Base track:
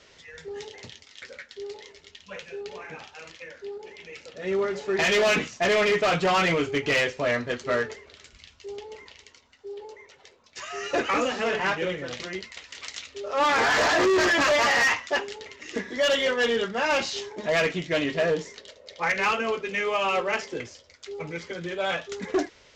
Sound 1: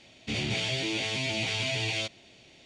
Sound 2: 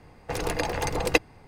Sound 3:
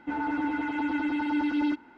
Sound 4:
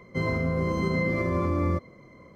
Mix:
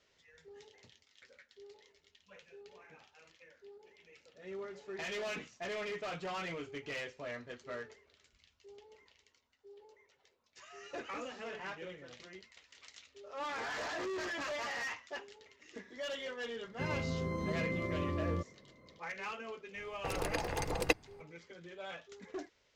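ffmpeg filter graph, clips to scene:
ffmpeg -i bed.wav -i cue0.wav -i cue1.wav -i cue2.wav -i cue3.wav -filter_complex "[0:a]volume=-18dB[link_01];[4:a]atrim=end=2.35,asetpts=PTS-STARTPTS,volume=-10.5dB,afade=type=in:duration=0.004:curve=hsin,afade=type=out:start_time=2.346:duration=0.004:curve=hsin,adelay=16640[link_02];[2:a]atrim=end=1.47,asetpts=PTS-STARTPTS,volume=-8.5dB,afade=type=in:duration=0.004:curve=hsin,afade=type=out:start_time=1.466:duration=0.004:curve=hsin,adelay=19750[link_03];[link_01][link_02][link_03]amix=inputs=3:normalize=0" out.wav

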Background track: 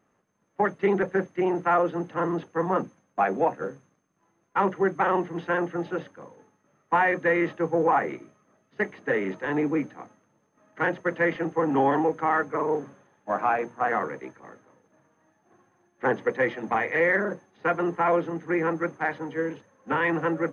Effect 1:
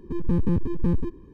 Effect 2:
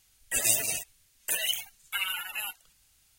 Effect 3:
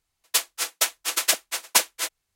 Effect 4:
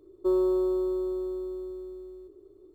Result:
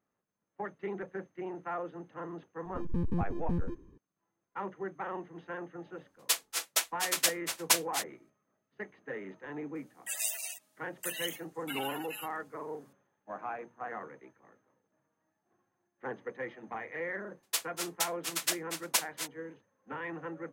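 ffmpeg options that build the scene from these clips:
ffmpeg -i bed.wav -i cue0.wav -i cue1.wav -i cue2.wav -filter_complex "[3:a]asplit=2[link_01][link_02];[0:a]volume=-15dB[link_03];[2:a]highpass=frequency=660:width=0.5412,highpass=frequency=660:width=1.3066[link_04];[1:a]atrim=end=1.33,asetpts=PTS-STARTPTS,volume=-9.5dB,afade=type=in:duration=0.004:curve=hsin,afade=type=out:start_time=1.326:duration=0.004:curve=hsin,adelay=2650[link_05];[link_01]atrim=end=2.35,asetpts=PTS-STARTPTS,volume=-6.5dB,afade=type=in:duration=0.004:curve=hsin,afade=type=out:start_time=2.346:duration=0.004:curve=hsin,adelay=5950[link_06];[link_04]atrim=end=3.18,asetpts=PTS-STARTPTS,volume=-9dB,afade=type=in:duration=0.004:curve=hsin,afade=type=out:start_time=3.176:duration=0.004:curve=hsin,adelay=9750[link_07];[link_02]atrim=end=2.35,asetpts=PTS-STARTPTS,volume=-10dB,afade=type=in:duration=0.004:curve=hsin,afade=type=out:start_time=2.346:duration=0.004:curve=hsin,adelay=17190[link_08];[link_03][link_05][link_06][link_07][link_08]amix=inputs=5:normalize=0" out.wav

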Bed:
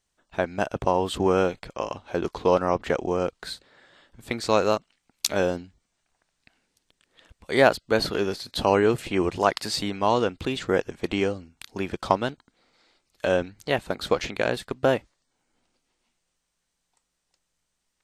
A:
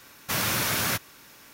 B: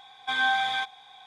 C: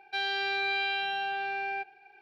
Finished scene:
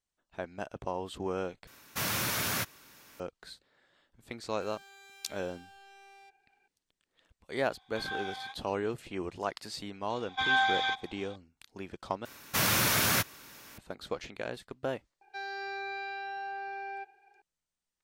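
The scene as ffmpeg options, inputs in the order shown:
ffmpeg -i bed.wav -i cue0.wav -i cue1.wav -i cue2.wav -filter_complex "[1:a]asplit=2[link_01][link_02];[3:a]asplit=2[link_03][link_04];[2:a]asplit=2[link_05][link_06];[0:a]volume=-13dB[link_07];[link_03]asoftclip=type=tanh:threshold=-39.5dB[link_08];[link_05]flanger=delay=16.5:depth=5.5:speed=2[link_09];[link_06]aresample=16000,aresample=44100[link_10];[link_04]aecho=1:1:2.4:0.91[link_11];[link_07]asplit=3[link_12][link_13][link_14];[link_12]atrim=end=1.674[link_15];[link_01]atrim=end=1.53,asetpts=PTS-STARTPTS,volume=-5.5dB[link_16];[link_13]atrim=start=3.196:end=12.254[link_17];[link_02]atrim=end=1.53,asetpts=PTS-STARTPTS,volume=-0.5dB[link_18];[link_14]atrim=start=13.776[link_19];[link_08]atrim=end=2.21,asetpts=PTS-STARTPTS,volume=-14.5dB,afade=type=in:duration=0.004:curve=hsin,afade=type=out:start_time=2.206:duration=0.004:curve=hsin,adelay=4470[link_20];[link_09]atrim=end=1.26,asetpts=PTS-STARTPTS,volume=-11.5dB,afade=type=in:duration=0.004:curve=hsin,afade=type=out:start_time=1.256:duration=0.004:curve=hsin,adelay=7670[link_21];[link_10]atrim=end=1.26,asetpts=PTS-STARTPTS,volume=-2dB,afade=type=in:duration=0.004:curve=hsin,afade=type=out:start_time=1.256:duration=0.004:curve=hsin,adelay=445410S[link_22];[link_11]atrim=end=2.21,asetpts=PTS-STARTPTS,volume=-10dB,afade=type=in:duration=0.004:curve=hsin,afade=type=out:start_time=2.206:duration=0.004:curve=hsin,adelay=15210[link_23];[link_15][link_16]acrossfade=duration=0.004:curve1=hsin:curve2=hsin[link_24];[link_24][link_17]acrossfade=duration=0.004:curve1=hsin:curve2=hsin[link_25];[link_25][link_18]acrossfade=duration=0.004:curve1=hsin:curve2=hsin[link_26];[link_26][link_19]acrossfade=duration=0.004:curve1=hsin:curve2=hsin[link_27];[link_27][link_20][link_21][link_22][link_23]amix=inputs=5:normalize=0" out.wav

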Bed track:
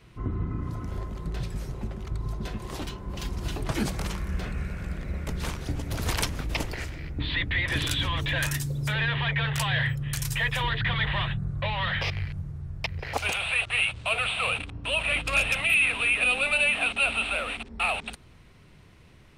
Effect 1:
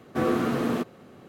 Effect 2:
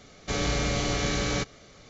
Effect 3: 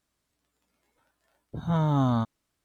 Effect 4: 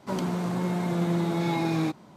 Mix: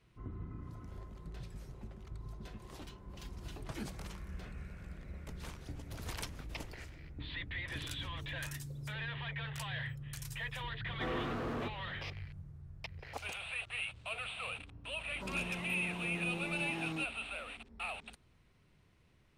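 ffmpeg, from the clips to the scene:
ffmpeg -i bed.wav -i cue0.wav -i cue1.wav -i cue2.wav -i cue3.wav -filter_complex "[0:a]volume=-14.5dB[link_01];[1:a]asplit=2[link_02][link_03];[link_03]highpass=frequency=720:poles=1,volume=23dB,asoftclip=type=tanh:threshold=-13dB[link_04];[link_02][link_04]amix=inputs=2:normalize=0,lowpass=frequency=1600:poles=1,volume=-6dB,atrim=end=1.28,asetpts=PTS-STARTPTS,volume=-17.5dB,afade=type=in:duration=0.004:curve=hsin,afade=type=out:start_time=1.276:duration=0.004:curve=hsin,adelay=10850[link_05];[4:a]atrim=end=2.16,asetpts=PTS-STARTPTS,volume=-15dB,afade=type=in:duration=0.004:curve=hsin,afade=type=out:start_time=2.156:duration=0.004:curve=hsin,adelay=15130[link_06];[link_01][link_05][link_06]amix=inputs=3:normalize=0" out.wav

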